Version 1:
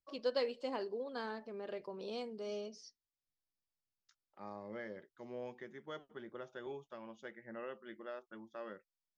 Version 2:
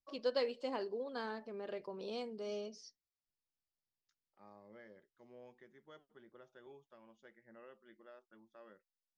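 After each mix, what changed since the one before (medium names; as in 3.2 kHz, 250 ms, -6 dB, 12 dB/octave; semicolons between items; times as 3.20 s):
second voice -11.5 dB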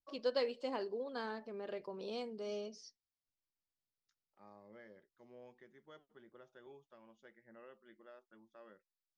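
no change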